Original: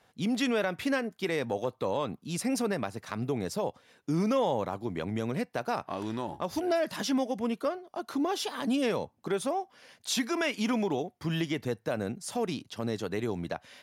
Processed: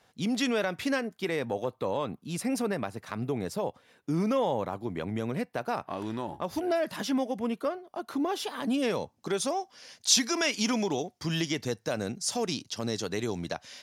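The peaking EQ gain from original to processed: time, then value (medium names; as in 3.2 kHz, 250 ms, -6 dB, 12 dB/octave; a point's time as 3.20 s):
peaking EQ 5.7 kHz 1.2 oct
0.95 s +4 dB
1.38 s -3 dB
8.71 s -3 dB
8.94 s +4.5 dB
9.44 s +12.5 dB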